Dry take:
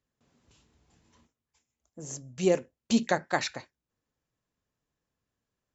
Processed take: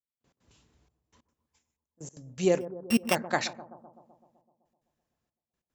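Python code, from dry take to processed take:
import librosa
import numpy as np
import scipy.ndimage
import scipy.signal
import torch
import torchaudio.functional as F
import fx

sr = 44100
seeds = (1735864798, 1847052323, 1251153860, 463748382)

p1 = fx.sample_sort(x, sr, block=16, at=(2.6, 3.14), fade=0.02)
p2 = fx.step_gate(p1, sr, bpm=187, pattern='...x.xxxxxx', floor_db=-24.0, edge_ms=4.5)
y = p2 + fx.echo_bbd(p2, sr, ms=127, stages=1024, feedback_pct=66, wet_db=-14.5, dry=0)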